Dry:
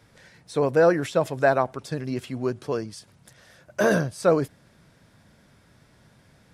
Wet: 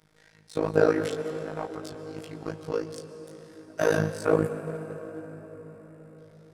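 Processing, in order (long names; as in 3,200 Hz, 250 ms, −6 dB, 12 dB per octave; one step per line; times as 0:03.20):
0:00.97–0:02.46: volume swells 419 ms
phases set to zero 157 Hz
chorus effect 2.7 Hz, delay 19 ms, depth 4.3 ms
amplitude modulation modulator 54 Hz, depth 80%
on a send at −7 dB: convolution reverb RT60 5.4 s, pre-delay 106 ms
0:04.24–0:06.18: on the sum: gain on a spectral selection 2,900–6,800 Hz −11 dB
in parallel at −4.5 dB: dead-zone distortion −37 dBFS
on the sum: level +2 dB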